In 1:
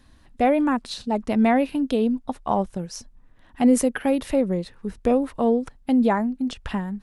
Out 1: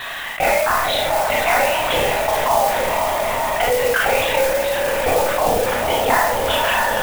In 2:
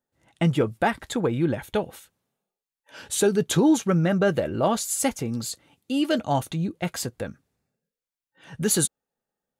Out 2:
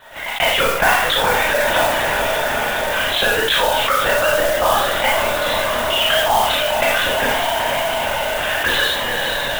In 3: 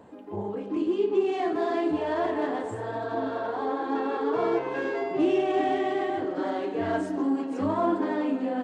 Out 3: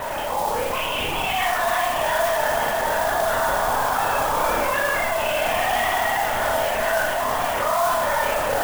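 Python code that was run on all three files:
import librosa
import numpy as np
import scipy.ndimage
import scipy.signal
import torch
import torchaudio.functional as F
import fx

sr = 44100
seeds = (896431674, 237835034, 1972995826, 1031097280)

p1 = x + fx.echo_diffused(x, sr, ms=475, feedback_pct=71, wet_db=-12.0, dry=0)
p2 = fx.vibrato(p1, sr, rate_hz=0.69, depth_cents=58.0)
p3 = fx.tilt_shelf(p2, sr, db=-9.5, hz=970.0)
p4 = fx.rider(p3, sr, range_db=5, speed_s=2.0)
p5 = scipy.signal.sosfilt(scipy.signal.butter(12, 480.0, 'highpass', fs=sr, output='sos'), p4)
p6 = fx.lpc_vocoder(p5, sr, seeds[0], excitation='whisper', order=16)
p7 = fx.high_shelf(p6, sr, hz=2900.0, db=-11.5)
p8 = fx.rev_schroeder(p7, sr, rt60_s=0.37, comb_ms=26, drr_db=-2.0)
p9 = fx.vibrato(p8, sr, rate_hz=12.0, depth_cents=27.0)
p10 = fx.mod_noise(p9, sr, seeds[1], snr_db=12)
p11 = fx.env_flatten(p10, sr, amount_pct=70)
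y = p11 * 10.0 ** (1.5 / 20.0)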